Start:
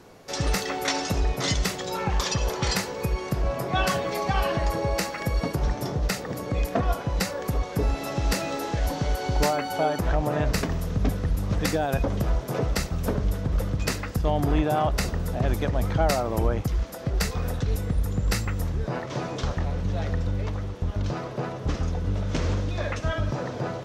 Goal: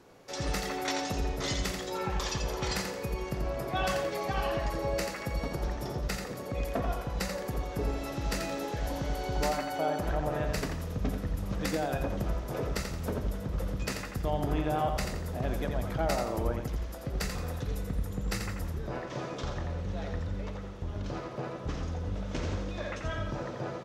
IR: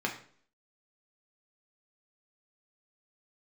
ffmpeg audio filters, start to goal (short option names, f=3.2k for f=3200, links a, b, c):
-filter_complex "[0:a]aecho=1:1:86|172|258|344:0.501|0.185|0.0686|0.0254,asplit=2[a][b];[1:a]atrim=start_sample=2205,asetrate=66150,aresample=44100[c];[b][c]afir=irnorm=-1:irlink=0,volume=-13dB[d];[a][d]amix=inputs=2:normalize=0,volume=-9dB"